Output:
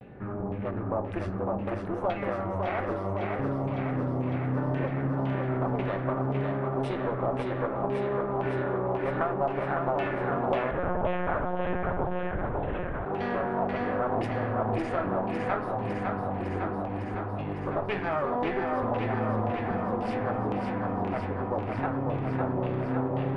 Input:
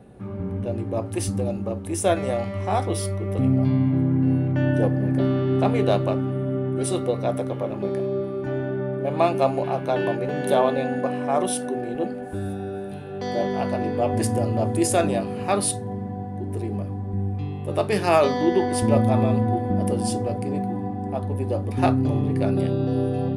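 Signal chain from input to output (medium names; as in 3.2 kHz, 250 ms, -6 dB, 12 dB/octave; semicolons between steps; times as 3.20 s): compression, threshold -25 dBFS, peak gain reduction 11.5 dB; one-sided clip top -36.5 dBFS; LFO low-pass saw down 1.9 Hz 840–2700 Hz; vibrato 0.65 Hz 66 cents; thinning echo 555 ms, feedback 76%, high-pass 280 Hz, level -4 dB; reverberation RT60 0.45 s, pre-delay 6 ms, DRR 14.5 dB; 10.71–13.06 s: monotone LPC vocoder at 8 kHz 180 Hz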